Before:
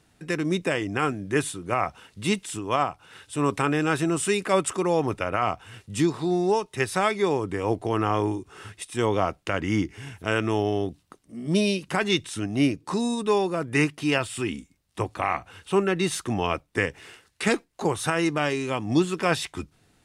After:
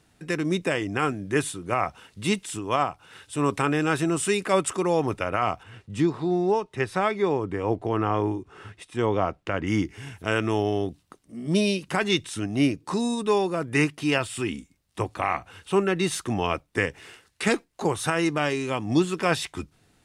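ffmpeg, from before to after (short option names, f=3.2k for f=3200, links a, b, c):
-filter_complex "[0:a]asettb=1/sr,asplit=3[a][b][c];[a]atrim=end=5.634[d];[b]atrim=start=5.63:end=9.67,asetpts=PTS-STARTPTS,afade=t=in:d=0.004:c=qsin,afade=t=out:st=4.036:d=0.004:c=qsin,lowpass=f=2.2k:p=1[e];[c]atrim=start=9.666[f];[d][e]acrossfade=d=0.004:c1=hsin:c2=qsin[g];[g][f]acrossfade=d=0.004:c1=qsin:c2=hsin"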